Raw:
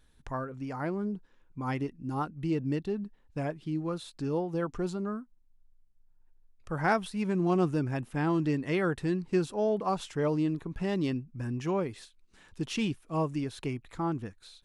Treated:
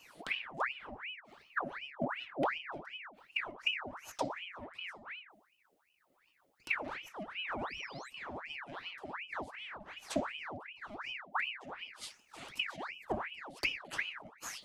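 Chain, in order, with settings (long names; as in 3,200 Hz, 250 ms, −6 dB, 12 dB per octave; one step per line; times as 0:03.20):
one-sided soft clipper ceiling −27.5 dBFS
parametric band 5,100 Hz −3.5 dB 2.7 octaves
sound drawn into the spectrogram rise, 0:07.07–0:08.10, 530–6,300 Hz −41 dBFS
parametric band 1,100 Hz −12.5 dB 1.4 octaves
gate with flip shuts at −34 dBFS, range −28 dB
convolution reverb RT60 0.50 s, pre-delay 3 ms, DRR 0.5 dB
in parallel at −3 dB: hard clipping −39 dBFS, distortion −16 dB
on the sum: high-pass filter 80 Hz 12 dB per octave
ring modulator whose carrier an LFO sweeps 1,600 Hz, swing 75%, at 2.7 Hz
level +10.5 dB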